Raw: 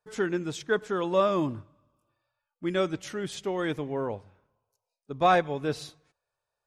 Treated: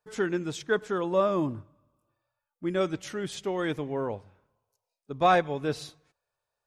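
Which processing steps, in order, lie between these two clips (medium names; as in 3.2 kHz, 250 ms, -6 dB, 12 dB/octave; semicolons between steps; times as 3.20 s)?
0.98–2.81 s: peaking EQ 3.7 kHz -6 dB 2.4 oct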